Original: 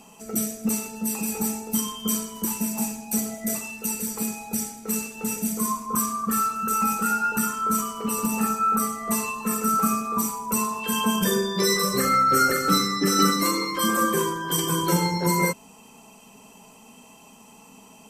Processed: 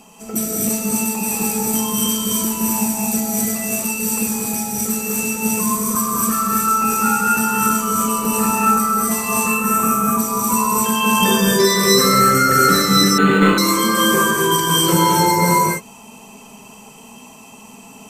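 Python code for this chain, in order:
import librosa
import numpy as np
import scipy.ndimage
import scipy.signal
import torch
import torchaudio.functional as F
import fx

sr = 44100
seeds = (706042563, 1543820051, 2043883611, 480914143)

y = fx.peak_eq(x, sr, hz=4700.0, db=fx.line((9.46, -6.0), (10.05, -13.5)), octaves=0.7, at=(9.46, 10.05), fade=0.02)
y = fx.rev_gated(y, sr, seeds[0], gate_ms=290, shape='rising', drr_db=-3.5)
y = fx.resample_linear(y, sr, factor=8, at=(13.18, 13.58))
y = y * librosa.db_to_amplitude(3.5)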